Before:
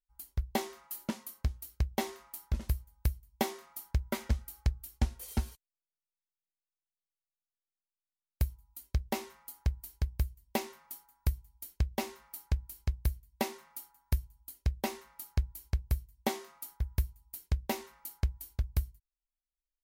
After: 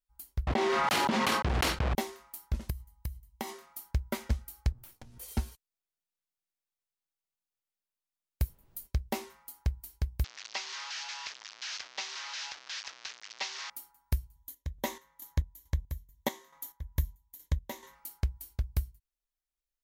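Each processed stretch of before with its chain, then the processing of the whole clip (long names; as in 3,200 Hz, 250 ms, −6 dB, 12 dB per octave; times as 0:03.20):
0:00.47–0:01.95: one scale factor per block 3 bits + band-pass filter 110–3,100 Hz + envelope flattener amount 100%
0:02.70–0:03.54: comb filter 1 ms, depth 44% + downward compressor 4 to 1, threshold −33 dBFS
0:04.72–0:05.18: lower of the sound and its delayed copy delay 8.8 ms + mains-hum notches 60/120/180/240/300/360/420/480 Hz + downward compressor 16 to 1, threshold −45 dBFS
0:08.44–0:08.86: high-pass filter 100 Hz 24 dB per octave + high-shelf EQ 9,000 Hz +7 dB + background noise brown −61 dBFS
0:10.24–0:13.70: linear delta modulator 32 kbit/s, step −34.5 dBFS + high-pass filter 1,200 Hz + high-shelf EQ 3,400 Hz +8 dB
0:14.35–0:17.95: EQ curve with evenly spaced ripples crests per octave 1.1, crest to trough 9 dB + square-wave tremolo 2.3 Hz, depth 60%, duty 45%
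whole clip: no processing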